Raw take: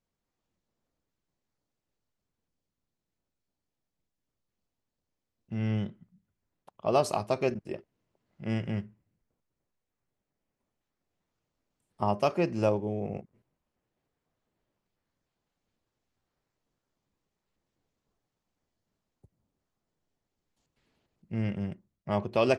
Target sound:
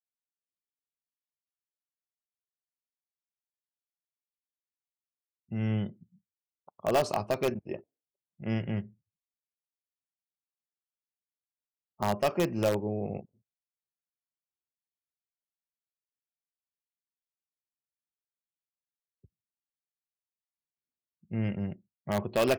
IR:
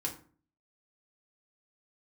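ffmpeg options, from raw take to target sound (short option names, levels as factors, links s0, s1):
-filter_complex "[0:a]highpass=46,afftdn=nr=32:nf=-56,lowpass=5900,asplit=2[s0][s1];[s1]aeval=exprs='(mod(7.5*val(0)+1,2)-1)/7.5':c=same,volume=0.447[s2];[s0][s2]amix=inputs=2:normalize=0,volume=0.708"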